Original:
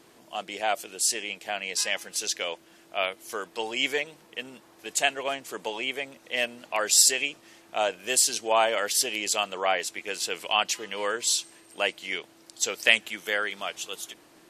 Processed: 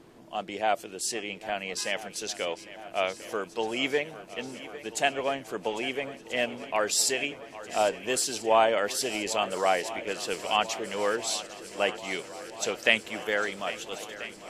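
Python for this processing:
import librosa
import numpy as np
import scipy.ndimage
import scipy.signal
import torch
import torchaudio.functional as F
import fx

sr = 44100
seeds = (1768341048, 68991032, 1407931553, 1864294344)

y = fx.tilt_eq(x, sr, slope=-2.5)
y = fx.echo_swing(y, sr, ms=1337, ratio=1.5, feedback_pct=68, wet_db=-16.0)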